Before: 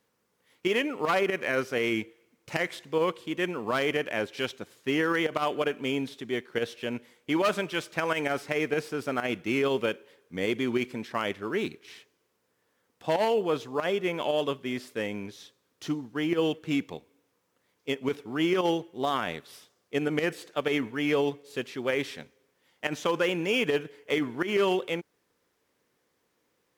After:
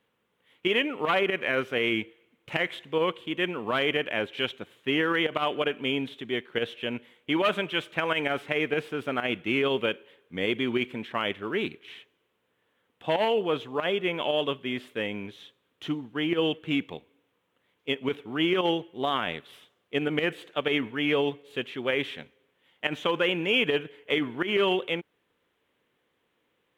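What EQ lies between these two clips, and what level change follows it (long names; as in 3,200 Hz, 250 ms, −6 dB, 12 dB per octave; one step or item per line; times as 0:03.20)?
high shelf with overshoot 4,000 Hz −7.5 dB, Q 3
0.0 dB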